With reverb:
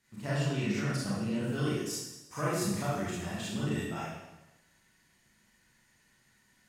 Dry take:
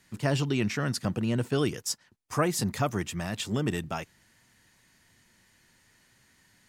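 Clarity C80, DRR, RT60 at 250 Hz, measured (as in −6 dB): 2.0 dB, −8.5 dB, 1.0 s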